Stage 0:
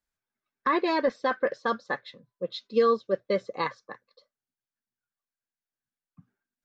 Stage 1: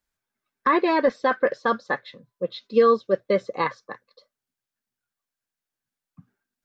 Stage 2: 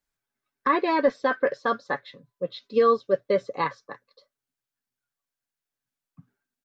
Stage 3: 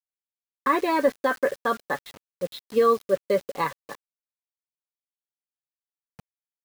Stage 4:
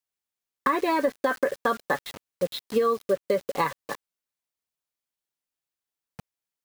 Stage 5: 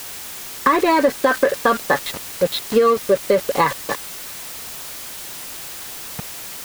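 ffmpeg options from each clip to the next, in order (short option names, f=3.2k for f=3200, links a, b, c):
-filter_complex "[0:a]acrossover=split=3600[a][b];[b]acompressor=threshold=-53dB:ratio=4:attack=1:release=60[c];[a][c]amix=inputs=2:normalize=0,volume=5dB"
-af "aecho=1:1:7.1:0.36,volume=-2.5dB"
-af "acrusher=bits=6:mix=0:aa=0.000001"
-af "acompressor=threshold=-26dB:ratio=6,volume=5.5dB"
-af "aeval=exprs='val(0)+0.5*0.0299*sgn(val(0))':c=same,volume=7dB"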